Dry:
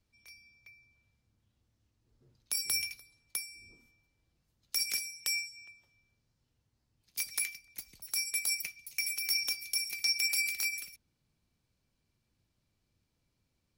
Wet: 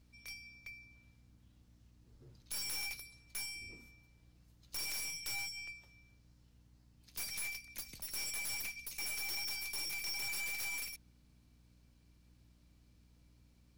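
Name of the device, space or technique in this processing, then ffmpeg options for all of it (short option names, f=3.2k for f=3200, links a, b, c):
valve amplifier with mains hum: -af "aeval=exprs='(tanh(224*val(0)+0.4)-tanh(0.4))/224':c=same,aeval=exprs='val(0)+0.000224*(sin(2*PI*60*n/s)+sin(2*PI*2*60*n/s)/2+sin(2*PI*3*60*n/s)/3+sin(2*PI*4*60*n/s)/4+sin(2*PI*5*60*n/s)/5)':c=same,volume=8dB"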